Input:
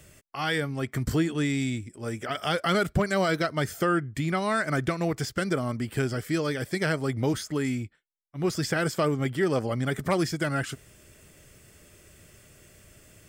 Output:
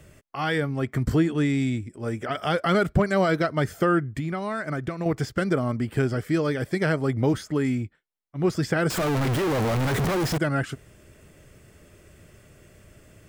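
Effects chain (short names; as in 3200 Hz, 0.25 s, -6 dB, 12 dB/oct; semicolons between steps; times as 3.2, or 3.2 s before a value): 8.9–10.38 infinite clipping; high shelf 2600 Hz -10 dB; 4.03–5.06 compressor 5:1, threshold -30 dBFS, peak gain reduction 8 dB; gain +4 dB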